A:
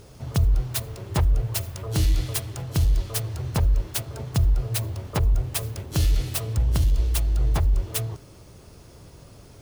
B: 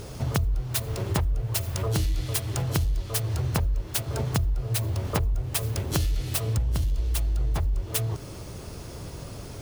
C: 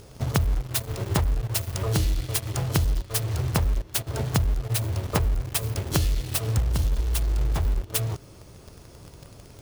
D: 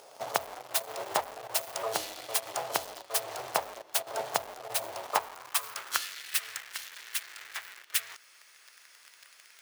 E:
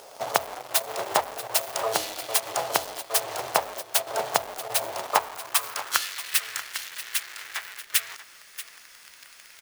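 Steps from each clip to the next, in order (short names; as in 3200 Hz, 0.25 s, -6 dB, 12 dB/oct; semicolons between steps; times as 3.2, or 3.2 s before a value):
compressor 6:1, threshold -32 dBFS, peak gain reduction 15.5 dB; gain +8.5 dB
in parallel at -7 dB: bit-crush 5-bit; on the sum: upward expander 1.5:1, over -34 dBFS
high-pass sweep 690 Hz -> 1800 Hz, 4.9–6.37; gain -2.5 dB
requantised 10-bit, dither none; echo 0.635 s -14.5 dB; gain +6 dB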